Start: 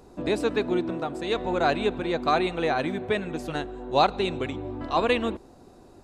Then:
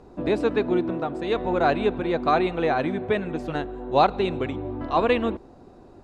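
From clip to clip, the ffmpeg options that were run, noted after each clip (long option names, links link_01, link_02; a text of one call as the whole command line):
ffmpeg -i in.wav -af "aemphasis=mode=reproduction:type=75fm,volume=2dB" out.wav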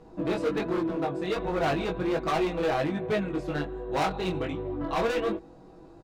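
ffmpeg -i in.wav -af "aecho=1:1:6.2:0.68,volume=20.5dB,asoftclip=hard,volume=-20.5dB,flanger=delay=18.5:depth=3.8:speed=1.3" out.wav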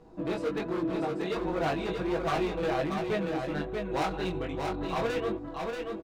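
ffmpeg -i in.wav -af "aecho=1:1:634:0.596,volume=-3.5dB" out.wav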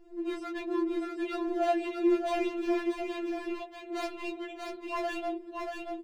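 ffmpeg -i in.wav -af "afftfilt=real='re*4*eq(mod(b,16),0)':imag='im*4*eq(mod(b,16),0)':win_size=2048:overlap=0.75" out.wav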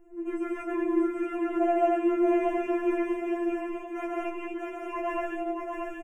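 ffmpeg -i in.wav -filter_complex "[0:a]acrossover=split=3500[link_01][link_02];[link_02]acompressor=threshold=-58dB:ratio=4:attack=1:release=60[link_03];[link_01][link_03]amix=inputs=2:normalize=0,asuperstop=centerf=4200:order=4:qfactor=0.97,aecho=1:1:137|227.4:0.891|0.891" out.wav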